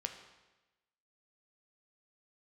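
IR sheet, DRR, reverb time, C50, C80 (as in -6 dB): 5.0 dB, 1.1 s, 8.0 dB, 10.0 dB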